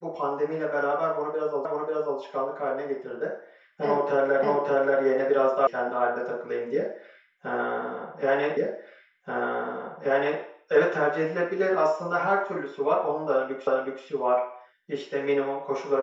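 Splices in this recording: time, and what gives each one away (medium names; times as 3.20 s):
1.65 s: repeat of the last 0.54 s
4.43 s: repeat of the last 0.58 s
5.67 s: sound stops dead
8.57 s: repeat of the last 1.83 s
13.67 s: repeat of the last 0.37 s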